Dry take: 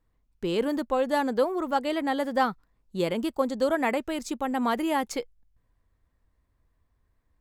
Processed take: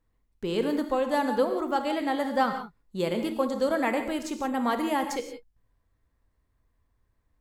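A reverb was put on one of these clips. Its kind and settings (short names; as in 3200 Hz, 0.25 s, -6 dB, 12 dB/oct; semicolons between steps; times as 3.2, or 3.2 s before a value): non-linear reverb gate 0.2 s flat, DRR 6 dB; gain -1.5 dB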